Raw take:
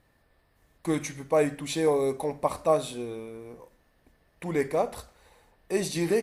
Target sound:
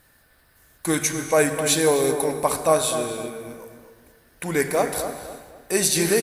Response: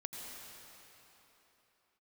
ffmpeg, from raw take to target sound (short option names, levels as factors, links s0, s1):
-filter_complex "[0:a]crystalizer=i=3.5:c=0,equalizer=f=1500:t=o:w=0.26:g=11.5,asplit=2[s0][s1];[s1]adelay=253,lowpass=f=1500:p=1,volume=0.422,asplit=2[s2][s3];[s3]adelay=253,lowpass=f=1500:p=1,volume=0.38,asplit=2[s4][s5];[s5]adelay=253,lowpass=f=1500:p=1,volume=0.38,asplit=2[s6][s7];[s7]adelay=253,lowpass=f=1500:p=1,volume=0.38[s8];[s0][s2][s4][s6][s8]amix=inputs=5:normalize=0,asplit=2[s9][s10];[1:a]atrim=start_sample=2205,afade=t=out:st=0.44:d=0.01,atrim=end_sample=19845[s11];[s10][s11]afir=irnorm=-1:irlink=0,volume=0.794[s12];[s9][s12]amix=inputs=2:normalize=0"